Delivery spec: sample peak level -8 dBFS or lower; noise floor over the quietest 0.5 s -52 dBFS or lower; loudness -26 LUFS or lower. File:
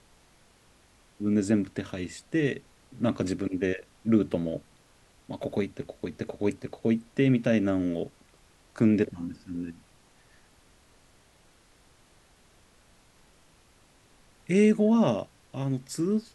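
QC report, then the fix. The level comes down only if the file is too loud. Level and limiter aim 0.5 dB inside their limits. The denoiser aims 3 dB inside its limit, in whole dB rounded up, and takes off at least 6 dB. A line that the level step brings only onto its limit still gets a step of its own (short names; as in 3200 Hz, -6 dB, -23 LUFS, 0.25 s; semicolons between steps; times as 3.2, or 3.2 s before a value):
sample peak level -10.5 dBFS: OK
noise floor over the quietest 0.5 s -60 dBFS: OK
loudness -28.0 LUFS: OK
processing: none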